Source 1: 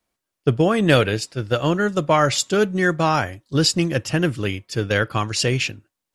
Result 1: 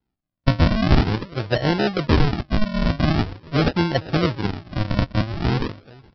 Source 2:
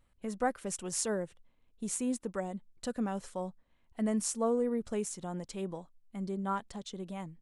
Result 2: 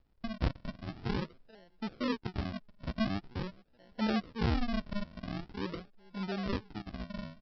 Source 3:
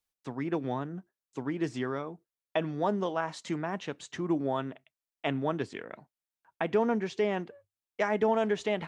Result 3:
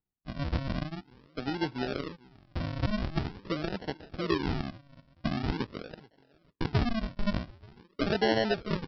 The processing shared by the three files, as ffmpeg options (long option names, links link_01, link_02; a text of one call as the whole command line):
ffmpeg -i in.wav -filter_complex "[0:a]asplit=2[link_01][link_02];[link_02]adelay=433,lowpass=frequency=2200:poles=1,volume=-24dB,asplit=2[link_03][link_04];[link_04]adelay=433,lowpass=frequency=2200:poles=1,volume=0.29[link_05];[link_01][link_03][link_05]amix=inputs=3:normalize=0,aresample=11025,acrusher=samples=18:mix=1:aa=0.000001:lfo=1:lforange=18:lforate=0.45,aresample=44100" out.wav